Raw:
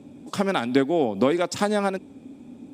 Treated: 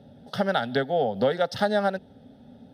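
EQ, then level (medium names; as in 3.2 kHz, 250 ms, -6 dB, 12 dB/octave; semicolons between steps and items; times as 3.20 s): treble shelf 6.7 kHz -7 dB; static phaser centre 1.6 kHz, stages 8; +2.5 dB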